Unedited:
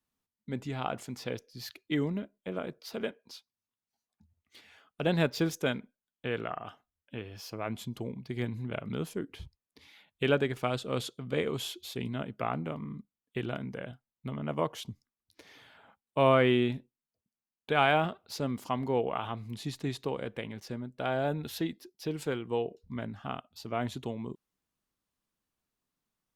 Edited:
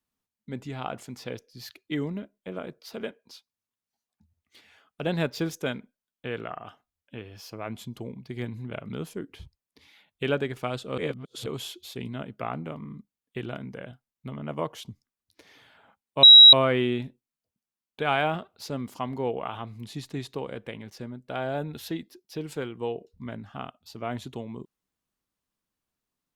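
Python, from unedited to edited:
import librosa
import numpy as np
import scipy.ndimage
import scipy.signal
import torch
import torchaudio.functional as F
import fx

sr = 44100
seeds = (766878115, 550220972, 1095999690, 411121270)

y = fx.edit(x, sr, fx.reverse_span(start_s=10.98, length_s=0.48),
    fx.insert_tone(at_s=16.23, length_s=0.3, hz=3860.0, db=-6.5), tone=tone)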